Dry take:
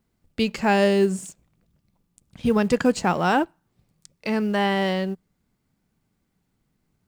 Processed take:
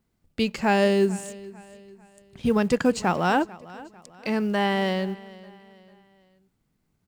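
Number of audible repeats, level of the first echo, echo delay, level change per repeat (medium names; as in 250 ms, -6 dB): 2, -20.0 dB, 446 ms, -7.5 dB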